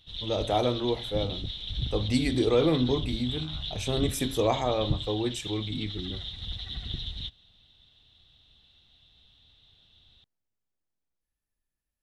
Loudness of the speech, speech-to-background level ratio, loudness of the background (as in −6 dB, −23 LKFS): −29.0 LKFS, 6.0 dB, −35.0 LKFS